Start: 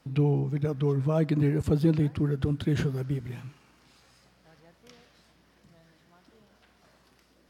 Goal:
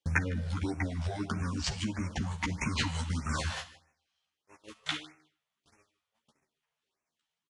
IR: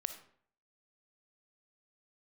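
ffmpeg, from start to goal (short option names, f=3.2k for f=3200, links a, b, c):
-filter_complex "[0:a]aemphasis=mode=reproduction:type=75fm,agate=range=-46dB:threshold=-52dB:ratio=16:detection=peak,bass=f=250:g=-9,treble=f=4k:g=3,alimiter=level_in=1dB:limit=-24dB:level=0:latency=1:release=459,volume=-1dB,acompressor=threshold=-46dB:ratio=6,crystalizer=i=9.5:c=0,asetrate=27781,aresample=44100,atempo=1.5874,asplit=2[a][b];[b]adelay=13,volume=-3dB[c];[a][c]amix=inputs=2:normalize=0,aecho=1:1:154|308:0.106|0.0169,asplit=2[d][e];[1:a]atrim=start_sample=2205,highshelf=f=3k:g=11[f];[e][f]afir=irnorm=-1:irlink=0,volume=-1.5dB[g];[d][g]amix=inputs=2:normalize=0,afftfilt=real='re*(1-between(b*sr/1024,270*pow(3900/270,0.5+0.5*sin(2*PI*1.6*pts/sr))/1.41,270*pow(3900/270,0.5+0.5*sin(2*PI*1.6*pts/sr))*1.41))':imag='im*(1-between(b*sr/1024,270*pow(3900/270,0.5+0.5*sin(2*PI*1.6*pts/sr))/1.41,270*pow(3900/270,0.5+0.5*sin(2*PI*1.6*pts/sr))*1.41))':win_size=1024:overlap=0.75,volume=8dB"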